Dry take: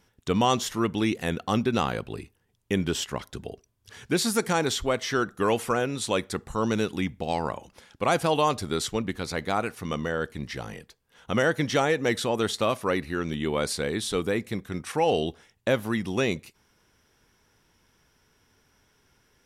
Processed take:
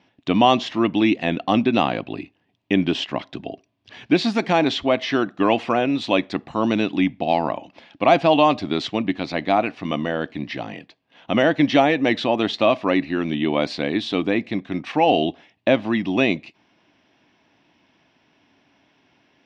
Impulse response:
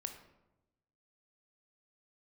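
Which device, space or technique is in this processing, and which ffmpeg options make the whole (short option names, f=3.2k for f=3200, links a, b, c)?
kitchen radio: -af "highpass=160,equalizer=f=290:t=q:w=4:g=9,equalizer=f=450:t=q:w=4:g=-8,equalizer=f=670:t=q:w=4:g=8,equalizer=f=1.4k:t=q:w=4:g=-7,equalizer=f=2.6k:t=q:w=4:g=5,lowpass=f=4.2k:w=0.5412,lowpass=f=4.2k:w=1.3066,volume=5.5dB"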